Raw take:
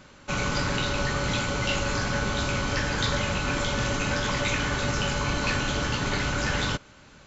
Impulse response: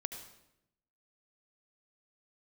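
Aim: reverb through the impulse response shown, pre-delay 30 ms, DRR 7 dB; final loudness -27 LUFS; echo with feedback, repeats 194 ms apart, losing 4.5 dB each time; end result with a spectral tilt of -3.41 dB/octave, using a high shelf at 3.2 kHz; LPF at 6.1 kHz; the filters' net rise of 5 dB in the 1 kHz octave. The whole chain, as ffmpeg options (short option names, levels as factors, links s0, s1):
-filter_complex "[0:a]lowpass=6100,equalizer=f=1000:t=o:g=5.5,highshelf=f=3200:g=5.5,aecho=1:1:194|388|582|776|970|1164|1358|1552|1746:0.596|0.357|0.214|0.129|0.0772|0.0463|0.0278|0.0167|0.01,asplit=2[s0][s1];[1:a]atrim=start_sample=2205,adelay=30[s2];[s1][s2]afir=irnorm=-1:irlink=0,volume=0.473[s3];[s0][s3]amix=inputs=2:normalize=0,volume=0.562"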